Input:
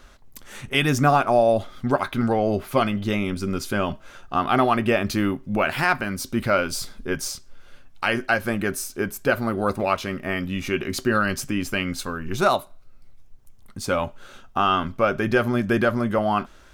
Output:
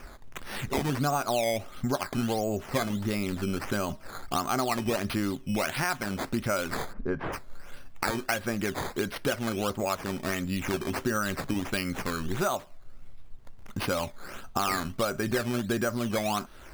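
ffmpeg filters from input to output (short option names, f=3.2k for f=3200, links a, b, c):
-filter_complex "[0:a]acrusher=samples=11:mix=1:aa=0.000001:lfo=1:lforange=11:lforate=1.5,asplit=3[a][b][c];[a]afade=t=out:st=6.92:d=0.02[d];[b]lowpass=1.4k,afade=t=in:st=6.92:d=0.02,afade=t=out:st=7.32:d=0.02[e];[c]afade=t=in:st=7.32:d=0.02[f];[d][e][f]amix=inputs=3:normalize=0,acompressor=threshold=-33dB:ratio=3,volume=4dB"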